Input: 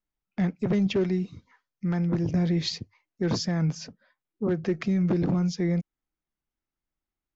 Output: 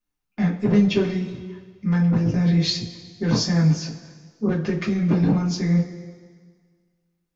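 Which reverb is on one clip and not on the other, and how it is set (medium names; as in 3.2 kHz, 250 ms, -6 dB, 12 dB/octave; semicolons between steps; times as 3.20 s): two-slope reverb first 0.22 s, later 1.7 s, from -18 dB, DRR -6.5 dB; trim -1.5 dB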